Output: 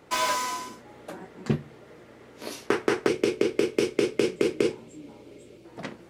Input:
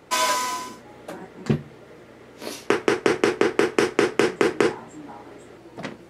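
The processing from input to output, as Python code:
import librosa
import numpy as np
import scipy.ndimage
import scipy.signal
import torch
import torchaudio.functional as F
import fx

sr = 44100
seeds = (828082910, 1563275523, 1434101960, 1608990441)

y = fx.spec_box(x, sr, start_s=3.08, length_s=2.57, low_hz=620.0, high_hz=2100.0, gain_db=-12)
y = fx.slew_limit(y, sr, full_power_hz=300.0)
y = F.gain(torch.from_numpy(y), -3.5).numpy()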